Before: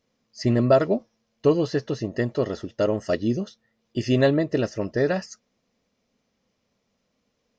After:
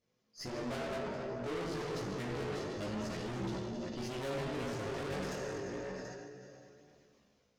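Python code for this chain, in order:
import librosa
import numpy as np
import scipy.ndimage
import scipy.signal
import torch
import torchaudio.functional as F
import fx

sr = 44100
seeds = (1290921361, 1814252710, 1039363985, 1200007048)

p1 = fx.graphic_eq(x, sr, hz=(500, 1000, 2000), db=(-9, -11, -3), at=(2.41, 3.25))
p2 = fx.rider(p1, sr, range_db=3, speed_s=0.5)
p3 = fx.comb(p2, sr, ms=7.4, depth=0.75, at=(4.25, 4.87))
p4 = p3 + fx.echo_single(p3, sr, ms=730, db=-15.0, dry=0)
p5 = fx.rev_plate(p4, sr, seeds[0], rt60_s=2.1, hf_ratio=1.0, predelay_ms=0, drr_db=-1.0)
p6 = fx.tube_stage(p5, sr, drive_db=33.0, bias=0.5)
p7 = fx.chorus_voices(p6, sr, voices=2, hz=0.29, base_ms=17, depth_ms=3.7, mix_pct=45)
p8 = fx.sustainer(p7, sr, db_per_s=21.0)
y = p8 * librosa.db_to_amplitude(-1.5)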